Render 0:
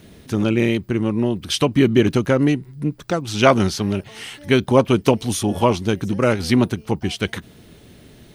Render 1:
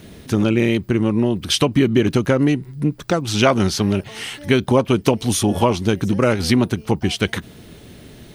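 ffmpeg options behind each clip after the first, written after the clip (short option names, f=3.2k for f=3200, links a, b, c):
-af "acompressor=threshold=-18dB:ratio=2.5,volume=4.5dB"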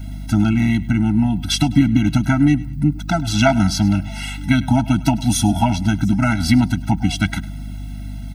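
-af "aeval=exprs='val(0)+0.0282*(sin(2*PI*50*n/s)+sin(2*PI*2*50*n/s)/2+sin(2*PI*3*50*n/s)/3+sin(2*PI*4*50*n/s)/4+sin(2*PI*5*50*n/s)/5)':c=same,aecho=1:1:103|206|309:0.106|0.0339|0.0108,afftfilt=real='re*eq(mod(floor(b*sr/1024/320),2),0)':imag='im*eq(mod(floor(b*sr/1024/320),2),0)':win_size=1024:overlap=0.75,volume=3dB"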